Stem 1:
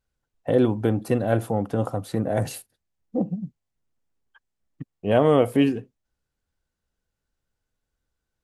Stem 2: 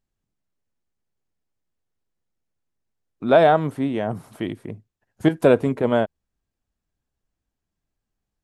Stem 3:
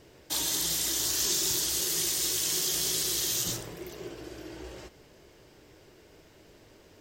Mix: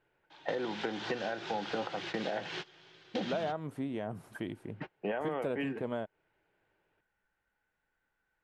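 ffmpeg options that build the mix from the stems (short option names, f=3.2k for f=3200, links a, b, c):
-filter_complex "[0:a]highpass=f=180:w=0.5412,highpass=f=180:w=1.3066,equalizer=f=1.9k:w=5.7:g=8.5,volume=-0.5dB,asplit=2[a][b];[1:a]volume=-9dB[c];[2:a]volume=2dB[d];[b]apad=whole_len=308928[e];[d][e]sidechaingate=range=-24dB:threshold=-39dB:ratio=16:detection=peak[f];[a][f]amix=inputs=2:normalize=0,highpass=f=100:w=0.5412,highpass=f=100:w=1.3066,equalizer=f=250:t=q:w=4:g=-8,equalizer=f=850:t=q:w=4:g=9,equalizer=f=1.5k:t=q:w=4:g=9,equalizer=f=2.4k:t=q:w=4:g=5,lowpass=f=3.3k:w=0.5412,lowpass=f=3.3k:w=1.3066,alimiter=limit=-15dB:level=0:latency=1:release=455,volume=0dB[g];[c][g]amix=inputs=2:normalize=0,acompressor=threshold=-33dB:ratio=4"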